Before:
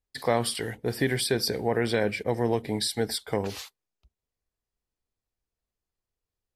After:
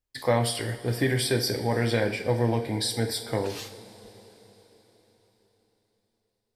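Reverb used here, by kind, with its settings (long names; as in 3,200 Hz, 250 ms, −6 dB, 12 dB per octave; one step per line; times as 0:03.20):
coupled-rooms reverb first 0.42 s, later 4.5 s, from −18 dB, DRR 3.5 dB
level −1 dB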